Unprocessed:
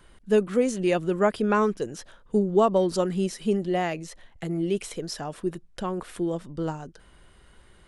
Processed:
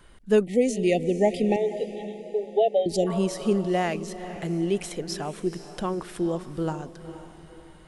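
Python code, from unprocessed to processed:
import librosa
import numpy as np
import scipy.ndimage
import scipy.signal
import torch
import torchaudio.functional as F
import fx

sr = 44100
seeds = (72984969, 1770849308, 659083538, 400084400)

y = fx.brickwall_bandpass(x, sr, low_hz=400.0, high_hz=4000.0, at=(1.56, 2.86))
y = fx.echo_diffused(y, sr, ms=475, feedback_pct=42, wet_db=-12.5)
y = fx.spec_erase(y, sr, start_s=0.45, length_s=2.62, low_hz=840.0, high_hz=1800.0)
y = y * librosa.db_to_amplitude(1.0)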